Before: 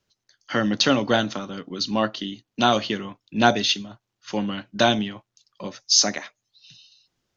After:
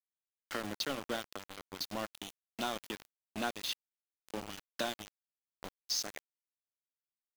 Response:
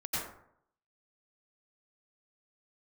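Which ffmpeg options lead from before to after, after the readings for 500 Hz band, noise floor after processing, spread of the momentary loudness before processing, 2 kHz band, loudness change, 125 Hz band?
-17.5 dB, under -85 dBFS, 15 LU, -16.0 dB, -17.0 dB, -21.5 dB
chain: -af "acompressor=threshold=0.0398:ratio=2.5,highpass=200,aeval=exprs='val(0)*gte(abs(val(0)),0.0398)':c=same,volume=0.398"

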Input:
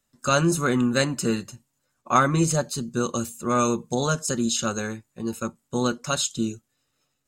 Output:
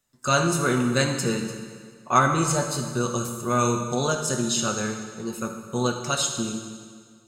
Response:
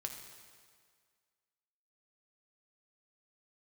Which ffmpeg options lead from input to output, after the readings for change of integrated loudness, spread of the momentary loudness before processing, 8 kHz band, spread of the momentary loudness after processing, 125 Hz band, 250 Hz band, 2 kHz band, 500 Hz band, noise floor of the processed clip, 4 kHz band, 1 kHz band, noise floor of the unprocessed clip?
0.0 dB, 10 LU, +1.0 dB, 12 LU, +0.5 dB, -1.5 dB, +1.0 dB, 0.0 dB, -54 dBFS, +1.0 dB, +1.0 dB, -76 dBFS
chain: -filter_complex "[0:a]lowshelf=f=200:g=-3.5[s0];[1:a]atrim=start_sample=2205[s1];[s0][s1]afir=irnorm=-1:irlink=0,volume=1.33"

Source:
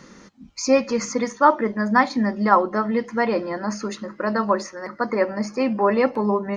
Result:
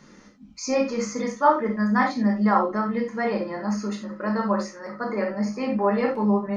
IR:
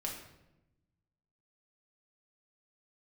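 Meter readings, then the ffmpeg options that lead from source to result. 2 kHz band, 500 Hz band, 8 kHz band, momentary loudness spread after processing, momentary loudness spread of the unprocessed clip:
-4.5 dB, -4.0 dB, no reading, 8 LU, 10 LU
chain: -filter_complex "[1:a]atrim=start_sample=2205,atrim=end_sample=4410[s0];[0:a][s0]afir=irnorm=-1:irlink=0,volume=0.596"

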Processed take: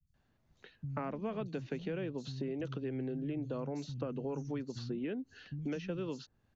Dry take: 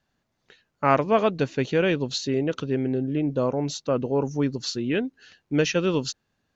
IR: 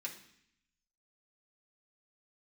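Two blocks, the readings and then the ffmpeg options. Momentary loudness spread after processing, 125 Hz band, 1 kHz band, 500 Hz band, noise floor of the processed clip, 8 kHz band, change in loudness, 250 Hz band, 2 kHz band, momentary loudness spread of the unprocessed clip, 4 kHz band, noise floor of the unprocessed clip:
4 LU, -11.0 dB, -19.5 dB, -15.5 dB, -74 dBFS, no reading, -14.5 dB, -12.5 dB, -18.5 dB, 6 LU, -19.5 dB, -76 dBFS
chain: -filter_complex "[0:a]lowshelf=f=190:g=10.5,acrossover=split=91|390|1400[s0][s1][s2][s3];[s0]acompressor=threshold=0.00178:ratio=4[s4];[s1]acompressor=threshold=0.0398:ratio=4[s5];[s2]acompressor=threshold=0.02:ratio=4[s6];[s3]acompressor=threshold=0.00794:ratio=4[s7];[s4][s5][s6][s7]amix=inputs=4:normalize=0,highshelf=f=5400:g=-5,acrossover=split=160|5700[s8][s9][s10];[s10]adelay=70[s11];[s9]adelay=140[s12];[s8][s12][s11]amix=inputs=3:normalize=0,acompressor=threshold=0.0141:ratio=2,volume=0.75"

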